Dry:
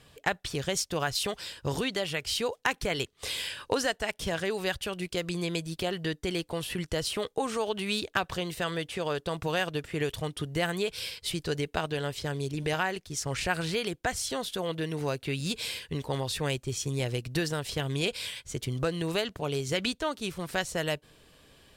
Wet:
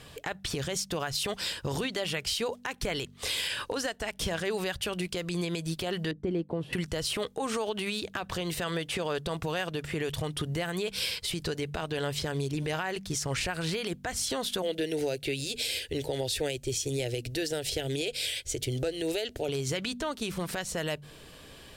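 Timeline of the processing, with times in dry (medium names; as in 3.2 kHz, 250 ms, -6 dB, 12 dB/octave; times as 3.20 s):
6.11–6.73 s: band-pass filter 250 Hz, Q 0.87
14.62–19.49 s: static phaser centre 450 Hz, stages 4
whole clip: de-hum 48.59 Hz, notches 5; compression, threshold -34 dBFS; peak limiter -29 dBFS; trim +8 dB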